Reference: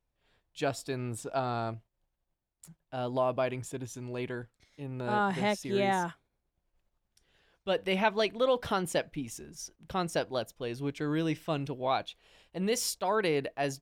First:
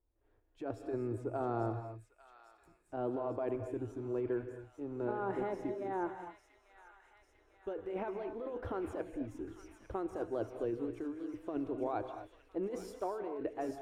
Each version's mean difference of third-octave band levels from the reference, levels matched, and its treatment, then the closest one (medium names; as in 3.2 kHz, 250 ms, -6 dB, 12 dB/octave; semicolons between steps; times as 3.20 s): 9.0 dB: FFT filter 110 Hz 0 dB, 150 Hz -24 dB, 320 Hz +6 dB, 560 Hz -4 dB, 1.4 kHz -8 dB, 3.9 kHz -26 dB; compressor with a negative ratio -35 dBFS, ratio -1; on a send: feedback echo behind a high-pass 848 ms, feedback 63%, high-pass 2.1 kHz, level -6.5 dB; on the sum: gated-style reverb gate 270 ms rising, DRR 7.5 dB; trim -2 dB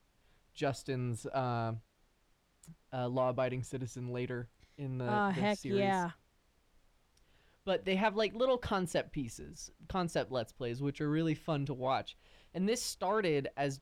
2.0 dB: bass shelf 110 Hz +9.5 dB; added noise pink -70 dBFS; treble shelf 9.4 kHz -9.5 dB; in parallel at -7 dB: saturation -26.5 dBFS, distortion -12 dB; on the sum: trim -6 dB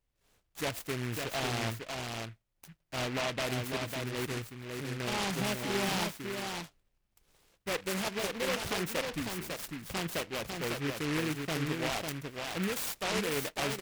13.0 dB: treble shelf 12 kHz +4.5 dB; peak limiter -25 dBFS, peak gain reduction 11 dB; on a send: delay 550 ms -4.5 dB; on the sum: delay time shaken by noise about 1.8 kHz, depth 0.22 ms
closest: second